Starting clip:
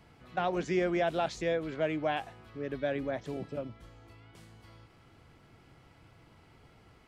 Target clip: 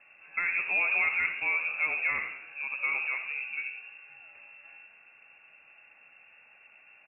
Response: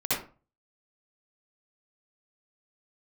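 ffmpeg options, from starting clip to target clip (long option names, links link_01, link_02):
-filter_complex "[0:a]asplit=8[link_01][link_02][link_03][link_04][link_05][link_06][link_07][link_08];[link_02]adelay=85,afreqshift=-88,volume=-11dB[link_09];[link_03]adelay=170,afreqshift=-176,volume=-15.6dB[link_10];[link_04]adelay=255,afreqshift=-264,volume=-20.2dB[link_11];[link_05]adelay=340,afreqshift=-352,volume=-24.7dB[link_12];[link_06]adelay=425,afreqshift=-440,volume=-29.3dB[link_13];[link_07]adelay=510,afreqshift=-528,volume=-33.9dB[link_14];[link_08]adelay=595,afreqshift=-616,volume=-38.5dB[link_15];[link_01][link_09][link_10][link_11][link_12][link_13][link_14][link_15]amix=inputs=8:normalize=0,asplit=2[link_16][link_17];[1:a]atrim=start_sample=2205,lowpass=2100[link_18];[link_17][link_18]afir=irnorm=-1:irlink=0,volume=-17.5dB[link_19];[link_16][link_19]amix=inputs=2:normalize=0,lowpass=frequency=2400:width_type=q:width=0.5098,lowpass=frequency=2400:width_type=q:width=0.6013,lowpass=frequency=2400:width_type=q:width=0.9,lowpass=frequency=2400:width_type=q:width=2.563,afreqshift=-2800"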